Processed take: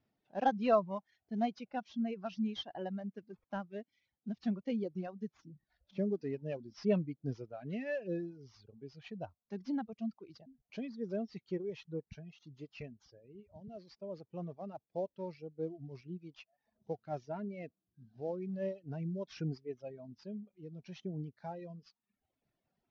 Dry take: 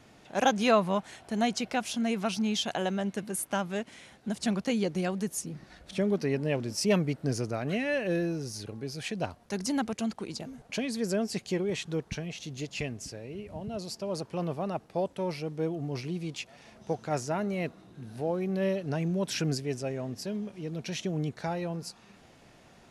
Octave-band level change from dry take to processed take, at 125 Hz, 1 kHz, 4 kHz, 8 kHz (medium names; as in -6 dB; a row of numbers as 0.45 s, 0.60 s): -9.5 dB, -7.0 dB, -16.0 dB, under -25 dB